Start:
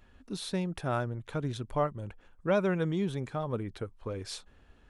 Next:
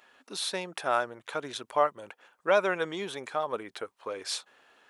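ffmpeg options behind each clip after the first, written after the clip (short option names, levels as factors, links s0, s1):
-af "highpass=620,volume=2.37"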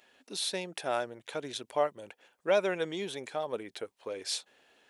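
-af "equalizer=f=1200:t=o:w=0.95:g=-10.5"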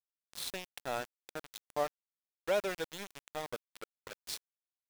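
-af "aeval=exprs='val(0)*gte(abs(val(0)),0.0299)':c=same,volume=0.562"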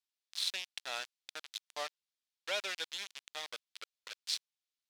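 -af "bandpass=f=3900:t=q:w=1.2:csg=0,volume=2.51"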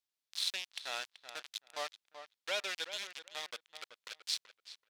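-filter_complex "[0:a]asplit=2[s0][s1];[s1]adelay=381,lowpass=f=2500:p=1,volume=0.316,asplit=2[s2][s3];[s3]adelay=381,lowpass=f=2500:p=1,volume=0.16[s4];[s0][s2][s4]amix=inputs=3:normalize=0"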